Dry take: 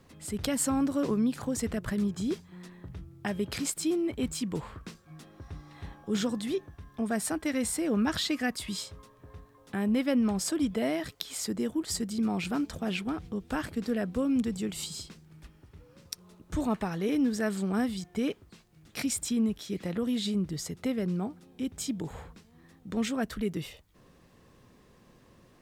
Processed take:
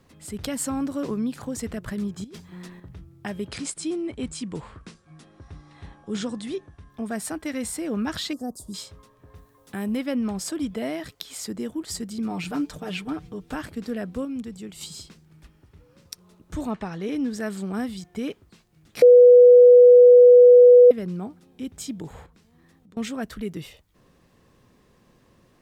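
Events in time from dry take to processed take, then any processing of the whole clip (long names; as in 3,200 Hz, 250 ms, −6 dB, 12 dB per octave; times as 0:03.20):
0:02.24–0:02.80: compressor whose output falls as the input rises −36 dBFS, ratio −0.5
0:03.48–0:06.90: linear-phase brick-wall low-pass 11,000 Hz
0:08.33–0:08.74: Chebyshev band-stop filter 690–7,500 Hz
0:09.35–0:09.97: high-shelf EQ 7,000 Hz +11 dB
0:12.30–0:13.54: comb filter 6.7 ms
0:14.25–0:14.81: clip gain −5 dB
0:16.70–0:17.34: low-pass filter 5,700 Hz → 11,000 Hz
0:19.02–0:20.91: beep over 491 Hz −7 dBFS
0:22.26–0:22.97: downward compressor, threshold −52 dBFS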